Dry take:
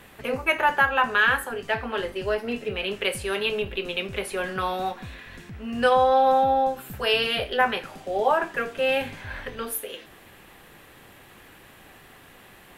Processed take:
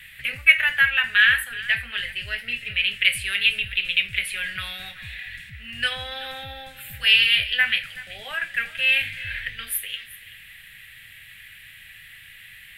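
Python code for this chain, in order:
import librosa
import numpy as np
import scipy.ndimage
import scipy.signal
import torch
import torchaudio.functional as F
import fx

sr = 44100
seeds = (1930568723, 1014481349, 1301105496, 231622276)

y = fx.curve_eq(x, sr, hz=(120.0, 360.0, 580.0, 990.0, 1900.0, 3400.0, 6100.0, 8800.0), db=(0, -26, -18, -22, 12, 9, -5, 5))
y = y + 10.0 ** (-18.0 / 20.0) * np.pad(y, (int(379 * sr / 1000.0), 0))[:len(y)]
y = y * 10.0 ** (-1.0 / 20.0)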